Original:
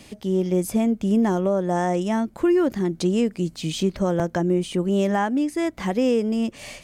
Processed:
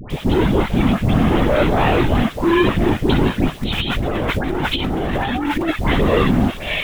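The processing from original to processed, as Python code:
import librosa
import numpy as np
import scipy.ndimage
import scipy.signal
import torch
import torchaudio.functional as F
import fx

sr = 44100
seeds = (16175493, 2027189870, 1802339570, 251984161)

y = fx.low_shelf(x, sr, hz=70.0, db=8.5)
y = fx.leveller(y, sr, passes=5)
y = fx.lpc_vocoder(y, sr, seeds[0], excitation='whisper', order=16)
y = fx.high_shelf(y, sr, hz=2900.0, db=9.0)
y = fx.vibrato(y, sr, rate_hz=0.69, depth_cents=34.0)
y = fx.dmg_noise_colour(y, sr, seeds[1], colour='pink', level_db=-38.0)
y = fx.dispersion(y, sr, late='highs', ms=103.0, hz=1100.0)
y = fx.over_compress(y, sr, threshold_db=-17.0, ratio=-1.0, at=(3.63, 5.69))
y = F.gain(torch.from_numpy(y), -3.0).numpy()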